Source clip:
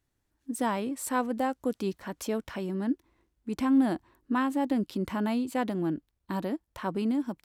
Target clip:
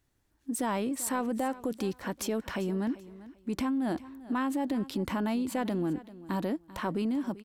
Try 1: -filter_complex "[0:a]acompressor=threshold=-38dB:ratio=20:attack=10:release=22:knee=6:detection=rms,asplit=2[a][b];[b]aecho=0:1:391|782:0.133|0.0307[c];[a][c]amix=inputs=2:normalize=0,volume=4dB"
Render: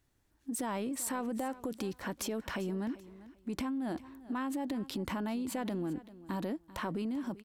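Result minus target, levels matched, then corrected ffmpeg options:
compressor: peak gain reduction +5.5 dB
-filter_complex "[0:a]acompressor=threshold=-32dB:ratio=20:attack=10:release=22:knee=6:detection=rms,asplit=2[a][b];[b]aecho=0:1:391|782:0.133|0.0307[c];[a][c]amix=inputs=2:normalize=0,volume=4dB"

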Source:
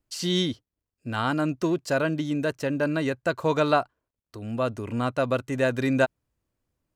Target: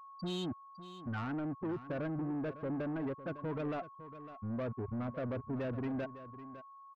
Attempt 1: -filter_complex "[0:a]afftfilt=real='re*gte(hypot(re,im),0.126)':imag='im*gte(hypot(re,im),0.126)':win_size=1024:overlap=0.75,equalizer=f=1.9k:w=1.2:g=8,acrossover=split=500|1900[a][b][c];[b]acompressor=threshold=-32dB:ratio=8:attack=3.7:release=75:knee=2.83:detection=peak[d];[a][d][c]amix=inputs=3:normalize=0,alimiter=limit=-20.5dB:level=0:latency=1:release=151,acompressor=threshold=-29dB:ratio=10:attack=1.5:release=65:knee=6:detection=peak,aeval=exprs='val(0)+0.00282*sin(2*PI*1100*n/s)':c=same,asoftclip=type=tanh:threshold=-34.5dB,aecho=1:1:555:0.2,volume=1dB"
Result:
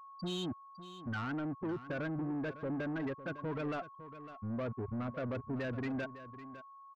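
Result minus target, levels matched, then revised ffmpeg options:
2000 Hz band +5.0 dB
-filter_complex "[0:a]afftfilt=real='re*gte(hypot(re,im),0.126)':imag='im*gte(hypot(re,im),0.126)':win_size=1024:overlap=0.75,equalizer=f=1.9k:w=1.2:g=-2,acrossover=split=500|1900[a][b][c];[b]acompressor=threshold=-32dB:ratio=8:attack=3.7:release=75:knee=2.83:detection=peak[d];[a][d][c]amix=inputs=3:normalize=0,alimiter=limit=-20.5dB:level=0:latency=1:release=151,acompressor=threshold=-29dB:ratio=10:attack=1.5:release=65:knee=6:detection=peak,aeval=exprs='val(0)+0.00282*sin(2*PI*1100*n/s)':c=same,asoftclip=type=tanh:threshold=-34.5dB,aecho=1:1:555:0.2,volume=1dB"

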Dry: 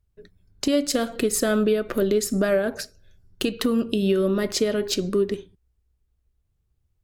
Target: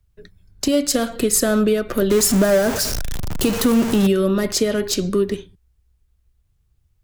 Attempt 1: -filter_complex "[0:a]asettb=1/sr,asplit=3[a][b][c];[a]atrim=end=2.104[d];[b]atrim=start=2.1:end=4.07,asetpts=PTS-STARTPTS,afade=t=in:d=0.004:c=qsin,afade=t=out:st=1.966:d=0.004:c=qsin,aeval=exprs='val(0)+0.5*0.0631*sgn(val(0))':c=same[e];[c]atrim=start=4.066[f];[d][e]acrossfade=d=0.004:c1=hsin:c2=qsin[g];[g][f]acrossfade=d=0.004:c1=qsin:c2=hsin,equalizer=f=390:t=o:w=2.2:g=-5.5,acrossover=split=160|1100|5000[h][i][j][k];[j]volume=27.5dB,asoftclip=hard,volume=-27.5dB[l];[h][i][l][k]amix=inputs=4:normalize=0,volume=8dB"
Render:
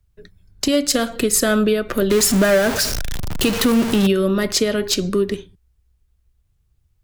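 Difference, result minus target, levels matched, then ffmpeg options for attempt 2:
overloaded stage: distortion -8 dB
-filter_complex "[0:a]asettb=1/sr,asplit=3[a][b][c];[a]atrim=end=2.104[d];[b]atrim=start=2.1:end=4.07,asetpts=PTS-STARTPTS,afade=t=in:d=0.004:c=qsin,afade=t=out:st=1.966:d=0.004:c=qsin,aeval=exprs='val(0)+0.5*0.0631*sgn(val(0))':c=same[e];[c]atrim=start=4.066[f];[d][e]acrossfade=d=0.004:c1=hsin:c2=qsin[g];[g][f]acrossfade=d=0.004:c1=qsin:c2=hsin,equalizer=f=390:t=o:w=2.2:g=-5.5,acrossover=split=160|1100|5000[h][i][j][k];[j]volume=39dB,asoftclip=hard,volume=-39dB[l];[h][i][l][k]amix=inputs=4:normalize=0,volume=8dB"

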